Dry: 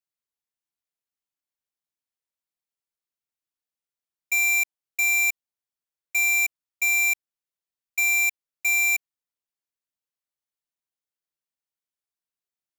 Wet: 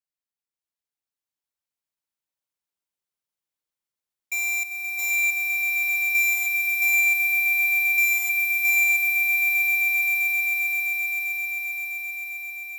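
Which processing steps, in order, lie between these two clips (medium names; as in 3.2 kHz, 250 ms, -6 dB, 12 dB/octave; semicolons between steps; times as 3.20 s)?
echo with a slow build-up 131 ms, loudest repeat 8, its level -6.5 dB; trim -4.5 dB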